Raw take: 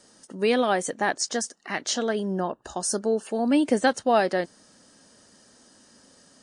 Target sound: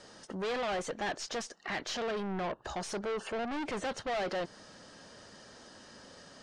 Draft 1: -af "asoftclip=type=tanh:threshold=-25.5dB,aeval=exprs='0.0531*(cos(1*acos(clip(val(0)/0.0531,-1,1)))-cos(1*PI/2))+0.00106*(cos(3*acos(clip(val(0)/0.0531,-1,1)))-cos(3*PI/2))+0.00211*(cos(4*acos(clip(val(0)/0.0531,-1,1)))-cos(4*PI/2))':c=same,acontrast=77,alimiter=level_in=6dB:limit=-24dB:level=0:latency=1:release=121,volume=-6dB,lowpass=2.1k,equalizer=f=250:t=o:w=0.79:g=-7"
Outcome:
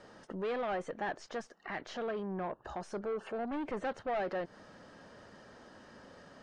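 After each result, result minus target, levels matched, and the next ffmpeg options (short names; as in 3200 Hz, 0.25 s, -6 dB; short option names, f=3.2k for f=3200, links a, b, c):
4000 Hz band -9.0 dB; soft clip: distortion -4 dB
-af "asoftclip=type=tanh:threshold=-25.5dB,aeval=exprs='0.0531*(cos(1*acos(clip(val(0)/0.0531,-1,1)))-cos(1*PI/2))+0.00106*(cos(3*acos(clip(val(0)/0.0531,-1,1)))-cos(3*PI/2))+0.00211*(cos(4*acos(clip(val(0)/0.0531,-1,1)))-cos(4*PI/2))':c=same,acontrast=77,alimiter=level_in=6dB:limit=-24dB:level=0:latency=1:release=121,volume=-6dB,lowpass=4.3k,equalizer=f=250:t=o:w=0.79:g=-7"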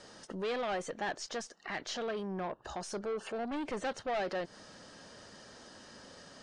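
soft clip: distortion -4 dB
-af "asoftclip=type=tanh:threshold=-34.5dB,aeval=exprs='0.0531*(cos(1*acos(clip(val(0)/0.0531,-1,1)))-cos(1*PI/2))+0.00106*(cos(3*acos(clip(val(0)/0.0531,-1,1)))-cos(3*PI/2))+0.00211*(cos(4*acos(clip(val(0)/0.0531,-1,1)))-cos(4*PI/2))':c=same,acontrast=77,alimiter=level_in=6dB:limit=-24dB:level=0:latency=1:release=121,volume=-6dB,lowpass=4.3k,equalizer=f=250:t=o:w=0.79:g=-7"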